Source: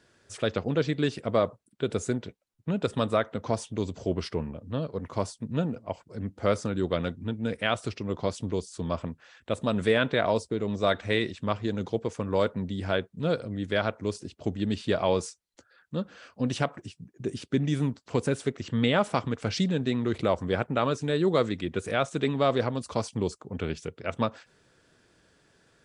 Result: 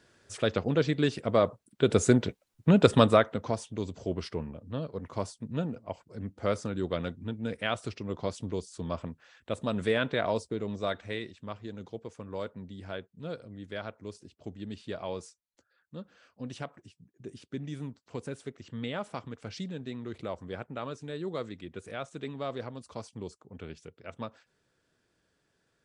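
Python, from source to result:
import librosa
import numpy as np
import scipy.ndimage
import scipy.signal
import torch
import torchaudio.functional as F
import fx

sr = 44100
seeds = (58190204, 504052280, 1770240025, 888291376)

y = fx.gain(x, sr, db=fx.line((1.37, 0.0), (2.21, 8.0), (2.95, 8.0), (3.58, -4.0), (10.58, -4.0), (11.31, -11.5)))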